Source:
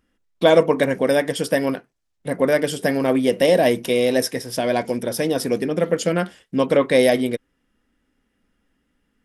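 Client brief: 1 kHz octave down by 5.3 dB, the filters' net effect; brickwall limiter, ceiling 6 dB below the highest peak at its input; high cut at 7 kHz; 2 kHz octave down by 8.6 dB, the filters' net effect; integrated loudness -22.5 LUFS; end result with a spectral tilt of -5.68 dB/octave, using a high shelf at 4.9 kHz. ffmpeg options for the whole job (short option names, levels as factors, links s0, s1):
-af "lowpass=7000,equalizer=f=1000:t=o:g=-6.5,equalizer=f=2000:t=o:g=-8,highshelf=f=4900:g=-3.5,volume=1.12,alimiter=limit=0.316:level=0:latency=1"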